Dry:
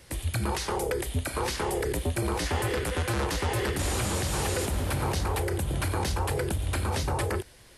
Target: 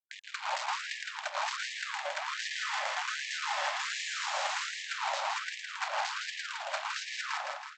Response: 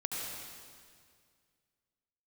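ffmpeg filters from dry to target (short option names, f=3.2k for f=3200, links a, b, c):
-af "aemphasis=mode=reproduction:type=75kf,aresample=16000,acrusher=bits=4:mix=0:aa=0.5,aresample=44100,aecho=1:1:162|324|486|648|810|972|1134:0.631|0.334|0.177|0.0939|0.0498|0.0264|0.014,afftfilt=real='re*gte(b*sr/1024,530*pow(1700/530,0.5+0.5*sin(2*PI*1.3*pts/sr)))':imag='im*gte(b*sr/1024,530*pow(1700/530,0.5+0.5*sin(2*PI*1.3*pts/sr)))':win_size=1024:overlap=0.75"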